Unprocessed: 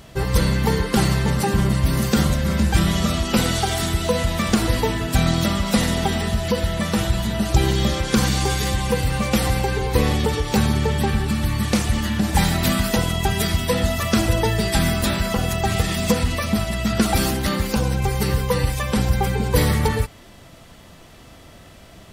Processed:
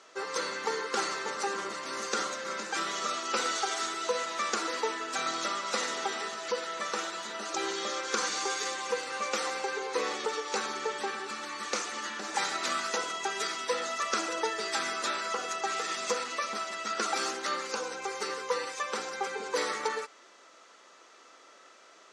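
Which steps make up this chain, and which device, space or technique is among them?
phone speaker on a table (speaker cabinet 390–7400 Hz, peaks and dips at 680 Hz -6 dB, 1300 Hz +8 dB, 3100 Hz -4 dB, 6400 Hz +6 dB); gain -7.5 dB

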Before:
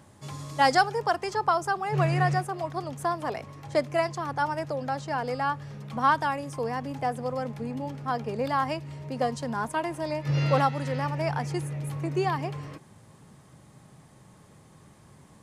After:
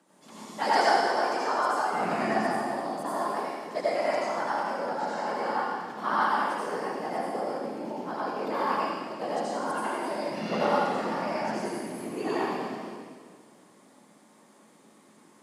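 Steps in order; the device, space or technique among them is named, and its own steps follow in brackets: whispering ghost (whisperiser; HPF 230 Hz 24 dB/oct; reverb RT60 1.8 s, pre-delay 71 ms, DRR -8 dB); gain -9 dB

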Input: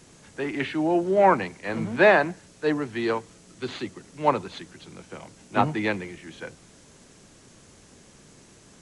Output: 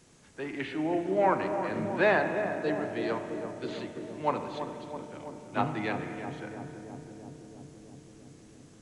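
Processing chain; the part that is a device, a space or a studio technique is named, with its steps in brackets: dub delay into a spring reverb (darkening echo 0.331 s, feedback 83%, low-pass 890 Hz, level -7 dB; spring tank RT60 2.6 s, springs 32/36 ms, chirp 65 ms, DRR 7 dB); gain -7.5 dB

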